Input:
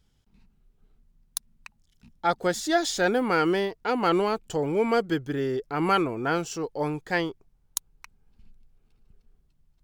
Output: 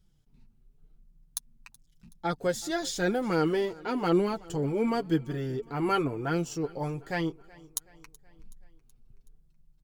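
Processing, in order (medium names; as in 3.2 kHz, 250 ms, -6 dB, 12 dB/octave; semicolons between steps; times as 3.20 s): bass shelf 440 Hz +9.5 dB; flange 0.94 Hz, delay 5.3 ms, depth 3.2 ms, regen +16%; treble shelf 5.4 kHz +6.5 dB; on a send: feedback delay 375 ms, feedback 55%, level -23 dB; on the sum: trim -4.5 dB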